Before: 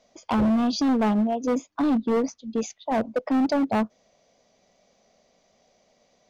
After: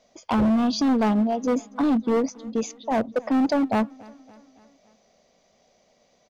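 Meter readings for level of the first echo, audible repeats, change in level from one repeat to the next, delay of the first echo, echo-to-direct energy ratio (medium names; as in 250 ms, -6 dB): -23.5 dB, 3, -5.0 dB, 281 ms, -22.0 dB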